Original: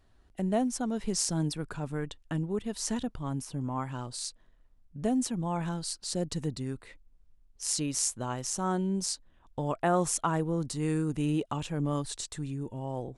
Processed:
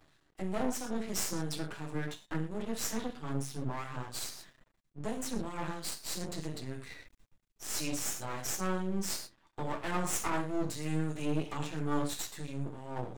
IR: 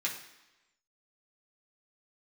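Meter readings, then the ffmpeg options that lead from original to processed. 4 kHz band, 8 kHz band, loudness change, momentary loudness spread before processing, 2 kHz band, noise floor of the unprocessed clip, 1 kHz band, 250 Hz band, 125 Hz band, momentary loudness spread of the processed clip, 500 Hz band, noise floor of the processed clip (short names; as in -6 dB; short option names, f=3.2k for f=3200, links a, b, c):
-3.0 dB, -4.5 dB, -4.5 dB, 8 LU, +1.0 dB, -63 dBFS, -4.5 dB, -5.5 dB, -5.5 dB, 8 LU, -5.0 dB, -73 dBFS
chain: -filter_complex "[1:a]atrim=start_sample=2205,atrim=end_sample=6174[a];[0:a][a]afir=irnorm=-1:irlink=0,asplit=2[b][c];[c]alimiter=limit=-23.5dB:level=0:latency=1:release=26,volume=-1dB[d];[b][d]amix=inputs=2:normalize=0,acrossover=split=1700[e][f];[e]aeval=exprs='val(0)*(1-0.5/2+0.5/2*cos(2*PI*3*n/s))':c=same[g];[f]aeval=exprs='val(0)*(1-0.5/2-0.5/2*cos(2*PI*3*n/s))':c=same[h];[g][h]amix=inputs=2:normalize=0,flanger=delay=6.7:depth=3.1:regen=75:speed=0.25:shape=triangular,aeval=exprs='max(val(0),0)':c=same,areverse,acompressor=mode=upward:threshold=-40dB:ratio=2.5,areverse"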